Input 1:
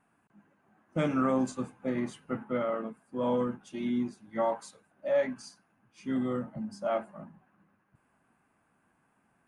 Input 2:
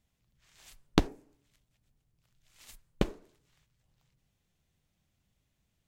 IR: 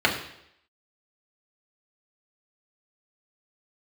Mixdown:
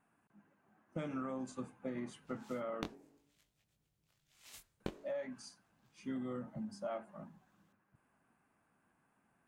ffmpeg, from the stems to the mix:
-filter_complex "[0:a]volume=-5dB,asplit=3[a][b][c];[a]atrim=end=2.95,asetpts=PTS-STARTPTS,afade=t=out:st=2.946:d=0.004:c=hsin[d];[b]atrim=start=2.95:end=4.8,asetpts=PTS-STARTPTS,volume=0[e];[c]atrim=start=4.8,asetpts=PTS-STARTPTS,afade=t=in:d=0.004:c=hsin[f];[d][e][f]concat=n=3:v=0:a=1,asplit=2[g][h];[1:a]highpass=f=140:p=1,flanger=delay=19.5:depth=2.5:speed=0.53,adelay=1850,volume=2dB[i];[h]apad=whole_len=340728[j];[i][j]sidechaincompress=threshold=-36dB:ratio=8:attack=21:release=906[k];[g][k]amix=inputs=2:normalize=0,acompressor=threshold=-37dB:ratio=10"

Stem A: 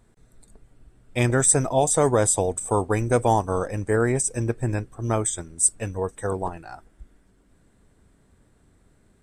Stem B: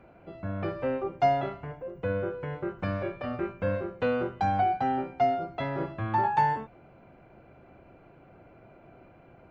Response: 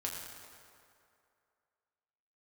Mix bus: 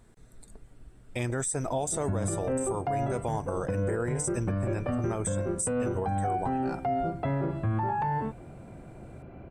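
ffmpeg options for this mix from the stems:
-filter_complex "[0:a]acompressor=threshold=-27dB:ratio=3,volume=1.5dB[a];[1:a]acrossover=split=2500[b][c];[c]acompressor=threshold=-59dB:ratio=4:attack=1:release=60[d];[b][d]amix=inputs=2:normalize=0,lowshelf=f=370:g=11.5,adelay=1650,volume=1dB[e];[a][e]amix=inputs=2:normalize=0,alimiter=limit=-21dB:level=0:latency=1:release=123"

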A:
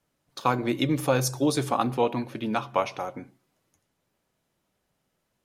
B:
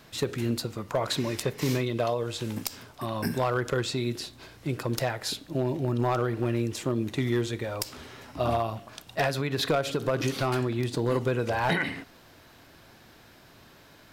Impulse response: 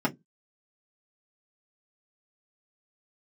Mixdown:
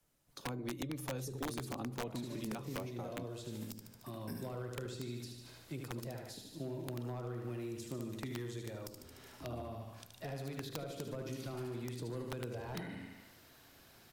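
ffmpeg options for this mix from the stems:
-filter_complex "[0:a]lowshelf=f=63:g=11.5,acrossover=split=370[a][b];[a]acompressor=threshold=-27dB:ratio=6[c];[c][b]amix=inputs=2:normalize=0,volume=-4.5dB[d];[1:a]bandreject=f=99.25:t=h:w=4,bandreject=f=198.5:t=h:w=4,bandreject=f=297.75:t=h:w=4,bandreject=f=397:t=h:w=4,bandreject=f=496.25:t=h:w=4,bandreject=f=595.5:t=h:w=4,bandreject=f=694.75:t=h:w=4,bandreject=f=794:t=h:w=4,bandreject=f=893.25:t=h:w=4,bandreject=f=992.5:t=h:w=4,bandreject=f=1.09175k:t=h:w=4,adelay=1050,volume=-10.5dB,asplit=2[e][f];[f]volume=-5.5dB,aecho=0:1:74|148|222|296|370|444|518|592:1|0.53|0.281|0.149|0.0789|0.0418|0.0222|0.0117[g];[d][e][g]amix=inputs=3:normalize=0,highshelf=f=5.8k:g=10,acrossover=split=210|460[h][i][j];[h]acompressor=threshold=-45dB:ratio=4[k];[i]acompressor=threshold=-44dB:ratio=4[l];[j]acompressor=threshold=-52dB:ratio=4[m];[k][l][m]amix=inputs=3:normalize=0,aeval=exprs='(mod(37.6*val(0)+1,2)-1)/37.6':c=same"

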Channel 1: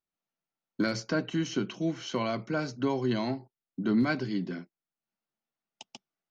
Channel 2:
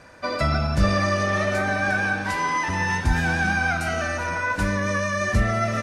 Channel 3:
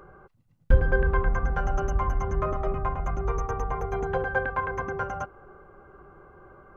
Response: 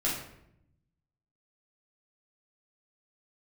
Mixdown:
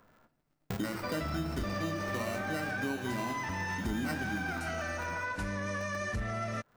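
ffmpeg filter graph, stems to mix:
-filter_complex "[0:a]acrusher=samples=13:mix=1:aa=0.000001,volume=2.5dB,asplit=2[a][b];[b]volume=-13dB[c];[1:a]asoftclip=type=tanh:threshold=-15dB,adelay=800,volume=-1.5dB[d];[2:a]highshelf=f=2.4k:g=11.5,aeval=exprs='val(0)*sgn(sin(2*PI*150*n/s))':c=same,volume=-16dB,asplit=2[e][f];[f]volume=-18dB[g];[3:a]atrim=start_sample=2205[h];[c][g]amix=inputs=2:normalize=0[i];[i][h]afir=irnorm=-1:irlink=0[j];[a][d][e][j]amix=inputs=4:normalize=0,acompressor=threshold=-36dB:ratio=3"

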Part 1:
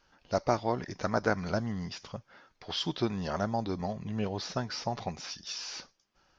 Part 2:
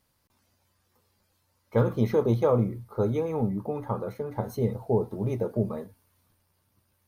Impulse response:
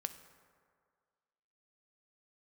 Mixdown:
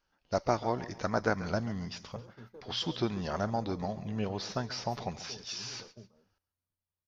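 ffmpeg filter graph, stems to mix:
-filter_complex "[0:a]lowshelf=f=150:g=-4.5,volume=-1dB,asplit=2[a][b];[b]volume=-16dB[c];[1:a]acompressor=threshold=-37dB:ratio=3,adelay=400,volume=-15.5dB[d];[c]aecho=0:1:138|276|414|552|690:1|0.36|0.13|0.0467|0.0168[e];[a][d][e]amix=inputs=3:normalize=0,agate=range=-11dB:threshold=-52dB:ratio=16:detection=peak,lowshelf=f=93:g=7"

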